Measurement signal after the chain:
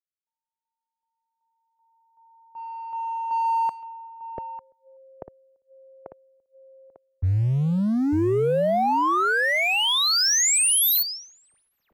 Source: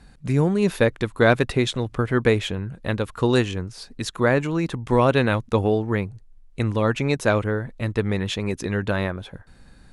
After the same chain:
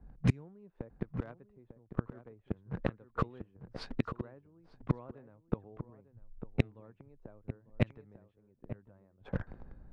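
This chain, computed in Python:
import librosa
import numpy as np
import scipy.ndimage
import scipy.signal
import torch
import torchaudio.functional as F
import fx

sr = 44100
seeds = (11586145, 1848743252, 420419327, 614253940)

p1 = fx.gate_flip(x, sr, shuts_db=-18.0, range_db=-33)
p2 = fx.quant_companded(p1, sr, bits=2)
p3 = p1 + (p2 * 10.0 ** (-10.0 / 20.0))
p4 = p3 + 10.0 ** (-8.5 / 20.0) * np.pad(p3, (int(898 * sr / 1000.0), 0))[:len(p3)]
p5 = fx.env_lowpass(p4, sr, base_hz=720.0, full_db=-20.0)
y = fx.band_widen(p5, sr, depth_pct=40)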